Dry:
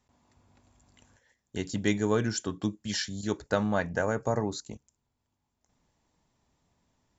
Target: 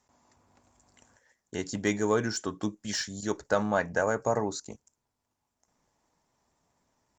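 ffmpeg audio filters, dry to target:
ffmpeg -i in.wav -filter_complex "[0:a]atempo=1,highshelf=frequency=4600:width_type=q:width=1.5:gain=8.5,asplit=2[link_01][link_02];[link_02]highpass=frequency=720:poles=1,volume=11dB,asoftclip=type=tanh:threshold=-8.5dB[link_03];[link_01][link_03]amix=inputs=2:normalize=0,lowpass=frequency=1800:poles=1,volume=-6dB" -ar 48000 -c:a libopus -b:a 48k out.opus

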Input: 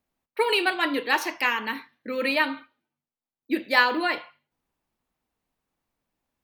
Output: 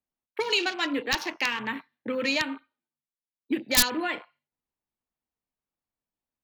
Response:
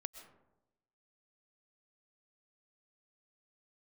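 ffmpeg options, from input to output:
-filter_complex "[0:a]aeval=exprs='(mod(2.99*val(0)+1,2)-1)/2.99':channel_layout=same,afwtdn=0.0178,acrossover=split=230|3000[link_01][link_02][link_03];[link_02]acompressor=threshold=-32dB:ratio=6[link_04];[link_01][link_04][link_03]amix=inputs=3:normalize=0,volume=3.5dB"

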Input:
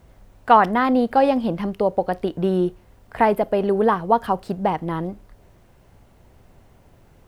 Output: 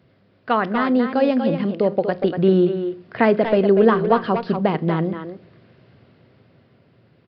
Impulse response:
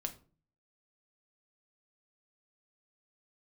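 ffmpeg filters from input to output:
-filter_complex "[0:a]highpass=frequency=110:width=0.5412,highpass=frequency=110:width=1.3066,equalizer=frequency=860:width=2.4:gain=-10.5,dynaudnorm=framelen=260:gausssize=11:maxgain=9dB,asplit=2[link_01][link_02];[link_02]adelay=240,highpass=300,lowpass=3400,asoftclip=type=hard:threshold=-10dB,volume=-6dB[link_03];[link_01][link_03]amix=inputs=2:normalize=0,asplit=2[link_04][link_05];[1:a]atrim=start_sample=2205,asetrate=32193,aresample=44100,lowshelf=frequency=380:gain=7.5[link_06];[link_05][link_06]afir=irnorm=-1:irlink=0,volume=-14dB[link_07];[link_04][link_07]amix=inputs=2:normalize=0,aresample=11025,aresample=44100,volume=-3dB"

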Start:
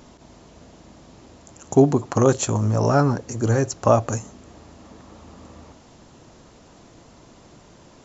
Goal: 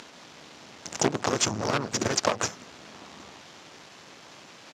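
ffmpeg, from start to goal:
ffmpeg -i in.wav -filter_complex "[0:a]acompressor=threshold=-24dB:ratio=6,crystalizer=i=9:c=0,atempo=1.7,bandreject=frequency=60:width_type=h:width=6,bandreject=frequency=120:width_type=h:width=6,bandreject=frequency=180:width_type=h:width=6,bandreject=frequency=240:width_type=h:width=6,bandreject=frequency=300:width_type=h:width=6,bandreject=frequency=360:width_type=h:width=6,bandreject=frequency=420:width_type=h:width=6,bandreject=frequency=480:width_type=h:width=6,asplit=3[link_01][link_02][link_03];[link_02]asetrate=37084,aresample=44100,atempo=1.18921,volume=-4dB[link_04];[link_03]asetrate=52444,aresample=44100,atempo=0.840896,volume=-11dB[link_05];[link_01][link_04][link_05]amix=inputs=3:normalize=0,acrusher=bits=4:dc=4:mix=0:aa=0.000001,highpass=140,lowpass=3600" out.wav

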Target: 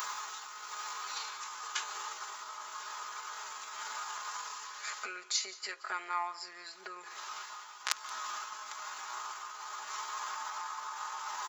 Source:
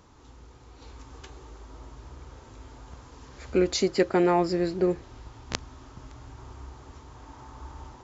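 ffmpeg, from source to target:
ffmpeg -i in.wav -af "areverse,acompressor=mode=upward:threshold=-27dB:ratio=2.5,areverse,tremolo=f=1.4:d=0.54,acompressor=threshold=-38dB:ratio=4,atempo=0.7,highpass=frequency=1200:width_type=q:width=2.2,aemphasis=mode=production:type=bsi,aecho=1:1:4.8:0.65,aecho=1:1:176:0.112,volume=3.5dB" out.wav

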